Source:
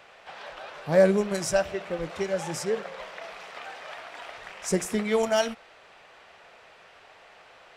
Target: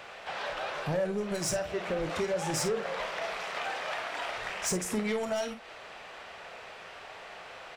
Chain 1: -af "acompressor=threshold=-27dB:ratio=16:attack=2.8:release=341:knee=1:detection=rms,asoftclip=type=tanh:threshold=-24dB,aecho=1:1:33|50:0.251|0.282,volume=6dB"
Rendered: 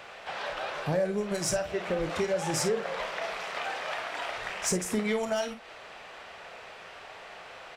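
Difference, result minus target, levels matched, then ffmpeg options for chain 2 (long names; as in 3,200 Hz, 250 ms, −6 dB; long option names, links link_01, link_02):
soft clipping: distortion −10 dB
-af "acompressor=threshold=-27dB:ratio=16:attack=2.8:release=341:knee=1:detection=rms,asoftclip=type=tanh:threshold=-31dB,aecho=1:1:33|50:0.251|0.282,volume=6dB"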